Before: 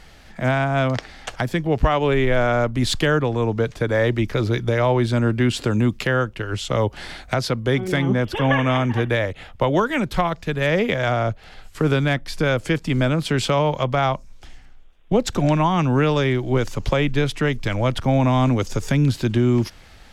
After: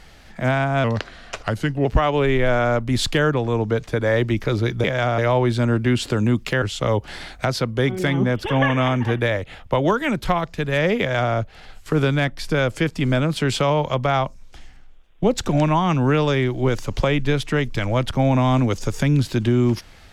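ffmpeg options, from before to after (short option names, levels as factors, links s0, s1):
-filter_complex "[0:a]asplit=6[s0][s1][s2][s3][s4][s5];[s0]atrim=end=0.844[s6];[s1]atrim=start=0.84:end=1.73,asetpts=PTS-STARTPTS,asetrate=38808,aresample=44100,atrim=end_sample=44601,asetpts=PTS-STARTPTS[s7];[s2]atrim=start=1.726:end=4.722[s8];[s3]atrim=start=10.888:end=11.232[s9];[s4]atrim=start=4.718:end=6.162[s10];[s5]atrim=start=6.508[s11];[s6][s7]acrossfade=d=0.004:c1=hsin:c2=hsin[s12];[s12][s8]acrossfade=d=0.004:c1=hsin:c2=hsin[s13];[s13][s9]acrossfade=d=0.004:c1=hsin:c2=hsin[s14];[s14][s10]acrossfade=d=0.004:c1=hsin:c2=hsin[s15];[s15][s11]acrossfade=d=0.004:c1=hsin:c2=hsin"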